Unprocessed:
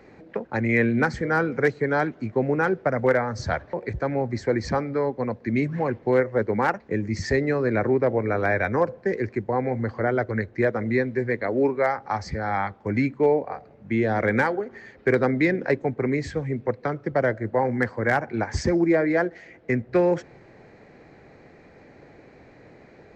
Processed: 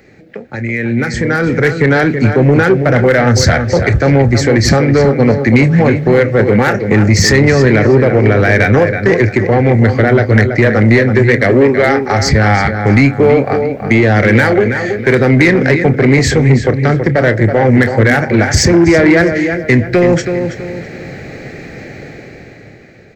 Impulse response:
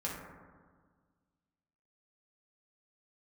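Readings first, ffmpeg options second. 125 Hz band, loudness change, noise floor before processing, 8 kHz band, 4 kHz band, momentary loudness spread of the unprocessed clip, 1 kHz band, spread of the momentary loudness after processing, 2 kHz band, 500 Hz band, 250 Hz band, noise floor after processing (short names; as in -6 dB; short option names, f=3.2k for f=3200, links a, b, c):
+19.0 dB, +14.0 dB, -51 dBFS, n/a, +22.5 dB, 7 LU, +10.0 dB, 7 LU, +14.5 dB, +12.5 dB, +14.5 dB, -34 dBFS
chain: -filter_complex "[0:a]highshelf=f=5.3k:g=12,bandreject=f=990:w=6.3,asplit=2[a][b];[b]adelay=29,volume=-13dB[c];[a][c]amix=inputs=2:normalize=0,alimiter=limit=-18.5dB:level=0:latency=1:release=124,dynaudnorm=f=240:g=11:m=16dB,equalizer=f=125:t=o:w=1:g=5,equalizer=f=1k:t=o:w=1:g=-6,equalizer=f=2k:t=o:w=1:g=4,asplit=2[d][e];[e]adelay=327,lowpass=f=3.7k:p=1,volume=-8.5dB,asplit=2[f][g];[g]adelay=327,lowpass=f=3.7k:p=1,volume=0.36,asplit=2[h][i];[i]adelay=327,lowpass=f=3.7k:p=1,volume=0.36,asplit=2[j][k];[k]adelay=327,lowpass=f=3.7k:p=1,volume=0.36[l];[f][h][j][l]amix=inputs=4:normalize=0[m];[d][m]amix=inputs=2:normalize=0,acontrast=42,volume=-1dB"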